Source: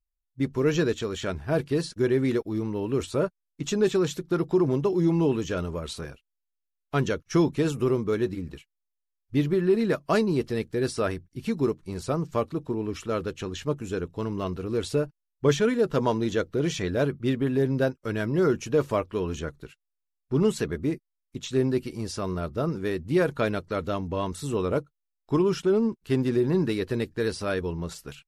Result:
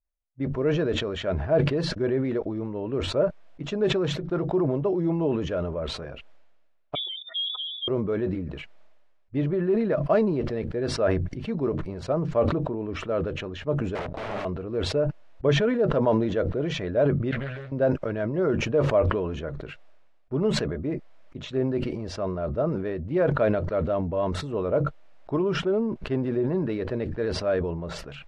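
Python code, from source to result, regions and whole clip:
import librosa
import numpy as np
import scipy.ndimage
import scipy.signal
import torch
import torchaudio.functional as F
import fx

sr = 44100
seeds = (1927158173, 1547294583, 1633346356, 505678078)

y = fx.chain(x, sr, fx.spec_expand(power=3.2),
    fx.dynamic_eq(hz=380.0, q=3.4, threshold_db=-37.0, ratio=4.0, max_db=5),
    fx.freq_invert(carrier_hz=3600), at=(6.95, 7.88))
y = fx.chain(y, sr, fx.leveller(passes=3),
    fx.overflow_wrap(gain_db=25.0), at=(13.95, 14.45))
y = fx.chain(y, sr, fx.tone_stack(knobs='10-0-10'),
    fx.doubler(ms=14.0, db=-3),
    fx.doppler_dist(depth_ms=0.38), at=(17.31, 17.72))
y = scipy.signal.sosfilt(scipy.signal.butter(2, 2200.0, 'lowpass', fs=sr, output='sos'), y)
y = fx.peak_eq(y, sr, hz=610.0, db=11.0, octaves=0.5)
y = fx.sustainer(y, sr, db_per_s=38.0)
y = y * 10.0 ** (-4.0 / 20.0)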